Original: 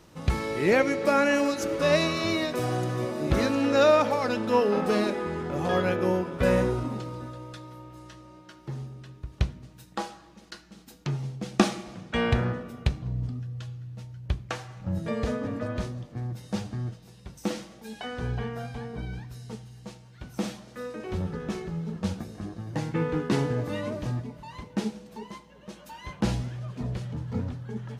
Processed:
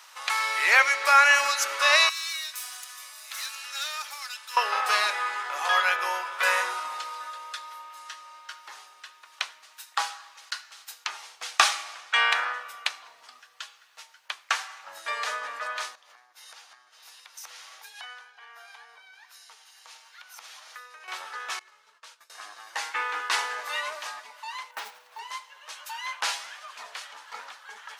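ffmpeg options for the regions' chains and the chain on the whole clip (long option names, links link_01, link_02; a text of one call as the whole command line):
ffmpeg -i in.wav -filter_complex "[0:a]asettb=1/sr,asplit=3[link_01][link_02][link_03];[link_01]atrim=end=2.094[link_04];[link_02]atrim=start=2.09:end=4.57,asetpts=PTS-STARTPTS,afade=type=in:duration=0.004:curve=qsin,afade=type=out:start_time=2.476:duration=0.004:curve=qsin,aderivative,aeval=exprs='(tanh(50.1*val(0)+0.6)-tanh(0.6))/50.1':channel_layout=same[link_05];[link_03]atrim=start=4.566[link_06];[link_04][link_05]acrossfade=duration=0.004:curve1=hsin:curve2=qsin[link_07];[link_07][link_06]acrossfade=duration=0.004:curve1=qsin:curve2=hsin,asettb=1/sr,asplit=3[link_08][link_09][link_10];[link_08]atrim=end=15.954[link_11];[link_09]atrim=start=15.95:end=21.08,asetpts=PTS-STARTPTS,afade=type=in:duration=0.004:curve=qsin,afade=type=out:start_time=5.126:duration=0.004:curve=qsin,acompressor=threshold=-45dB:ratio=6:attack=3.2:release=140:knee=1:detection=peak,bandreject=frequency=8000:width=9.2[link_12];[link_10]atrim=start=21.076[link_13];[link_11][link_12]acrossfade=duration=0.004:curve1=hsin:curve2=qsin[link_14];[link_14][link_13]acrossfade=duration=0.004:curve1=qsin:curve2=hsin,asettb=1/sr,asplit=3[link_15][link_16][link_17];[link_15]atrim=end=21.594[link_18];[link_16]atrim=start=21.59:end=22.3,asetpts=PTS-STARTPTS,afade=type=in:duration=0.004:curve=qsin,afade=type=out:start_time=0.706:duration=0.004:curve=qsin,agate=range=-33dB:threshold=-27dB:ratio=3:release=100:detection=peak,asuperstop=centerf=780:order=4:qfactor=5.7,acompressor=threshold=-45dB:ratio=3:attack=3.2:release=140:knee=1:detection=peak[link_19];[link_17]atrim=start=22.296[link_20];[link_18][link_19]acrossfade=duration=0.004:curve1=hsin:curve2=qsin[link_21];[link_21][link_20]acrossfade=duration=0.004:curve1=qsin:curve2=hsin,asettb=1/sr,asplit=3[link_22][link_23][link_24];[link_22]atrim=end=24.714[link_25];[link_23]atrim=start=24.71:end=25.19,asetpts=PTS-STARTPTS,afade=type=in:duration=0.004:curve=qsin,afade=type=out:start_time=0.476:duration=0.004:curve=qsin,lowpass=frequency=1400:poles=1,acrusher=bits=8:mode=log:mix=0:aa=0.000001[link_26];[link_24]atrim=start=25.186[link_27];[link_25][link_26]acrossfade=duration=0.004:curve1=hsin:curve2=qsin[link_28];[link_28][link_27]acrossfade=duration=0.004:curve1=qsin:curve2=hsin,highpass=frequency=1000:width=0.5412,highpass=frequency=1000:width=1.3066,acontrast=79,volume=3.5dB" out.wav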